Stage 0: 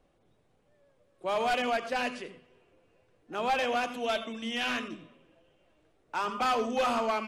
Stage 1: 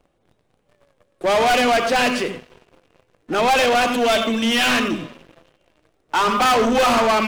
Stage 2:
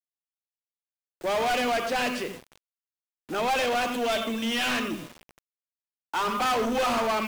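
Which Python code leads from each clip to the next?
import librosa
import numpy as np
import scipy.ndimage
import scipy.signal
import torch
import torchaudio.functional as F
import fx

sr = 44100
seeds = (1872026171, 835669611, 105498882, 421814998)

y1 = fx.leveller(x, sr, passes=3)
y1 = y1 * 10.0 ** (8.5 / 20.0)
y2 = fx.quant_dither(y1, sr, seeds[0], bits=6, dither='none')
y2 = y2 * 10.0 ** (-9.0 / 20.0)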